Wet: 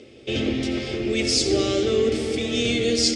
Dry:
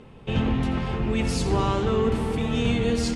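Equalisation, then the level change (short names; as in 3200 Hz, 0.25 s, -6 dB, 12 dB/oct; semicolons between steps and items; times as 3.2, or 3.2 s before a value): tone controls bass +10 dB, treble +12 dB; speaker cabinet 170–8100 Hz, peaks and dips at 340 Hz +8 dB, 590 Hz +6 dB, 1100 Hz +6 dB, 2200 Hz +8 dB, 3400 Hz +5 dB, 5100 Hz +8 dB; fixed phaser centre 410 Hz, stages 4; 0.0 dB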